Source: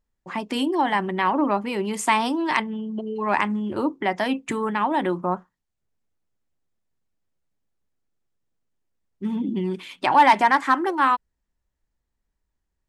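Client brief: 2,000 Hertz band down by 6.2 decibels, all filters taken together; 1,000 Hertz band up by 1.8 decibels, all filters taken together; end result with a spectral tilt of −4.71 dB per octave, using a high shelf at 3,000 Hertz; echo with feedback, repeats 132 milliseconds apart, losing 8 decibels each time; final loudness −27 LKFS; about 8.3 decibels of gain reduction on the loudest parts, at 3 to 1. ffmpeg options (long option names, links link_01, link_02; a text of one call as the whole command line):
ffmpeg -i in.wav -af "equalizer=frequency=1000:width_type=o:gain=4,equalizer=frequency=2000:width_type=o:gain=-7,highshelf=frequency=3000:gain=-5.5,acompressor=threshold=-20dB:ratio=3,aecho=1:1:132|264|396|528|660:0.398|0.159|0.0637|0.0255|0.0102,volume=-2dB" out.wav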